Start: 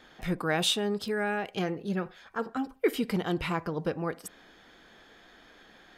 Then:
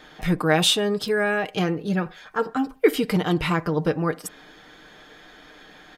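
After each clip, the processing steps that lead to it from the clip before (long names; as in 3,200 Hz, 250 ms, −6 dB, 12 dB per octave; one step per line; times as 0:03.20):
comb filter 6.6 ms, depth 44%
level +7 dB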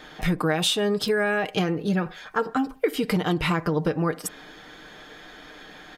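downward compressor 12 to 1, threshold −22 dBFS, peak gain reduction 12 dB
level +3 dB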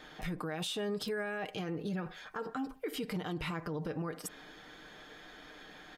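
brickwall limiter −21.5 dBFS, peak gain reduction 10.5 dB
level −7.5 dB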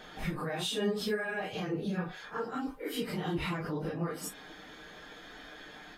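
random phases in long frames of 100 ms
level +3 dB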